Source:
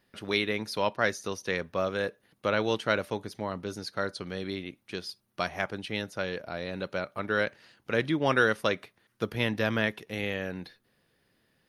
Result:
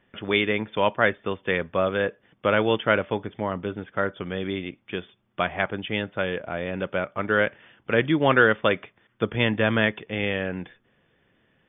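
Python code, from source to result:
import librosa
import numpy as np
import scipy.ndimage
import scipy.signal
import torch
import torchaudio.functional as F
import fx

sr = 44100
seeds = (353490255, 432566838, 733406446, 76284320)

y = fx.brickwall_lowpass(x, sr, high_hz=3600.0)
y = F.gain(torch.from_numpy(y), 6.0).numpy()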